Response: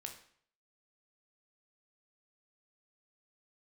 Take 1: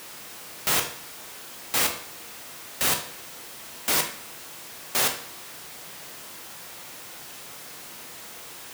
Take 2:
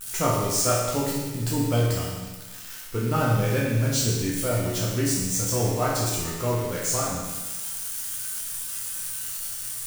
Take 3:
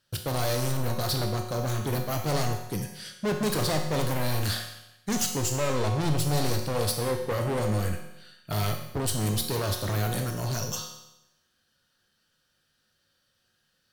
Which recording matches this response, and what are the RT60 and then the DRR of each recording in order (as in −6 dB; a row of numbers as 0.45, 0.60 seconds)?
1; 0.60, 1.2, 0.90 seconds; 3.5, −6.0, 2.5 decibels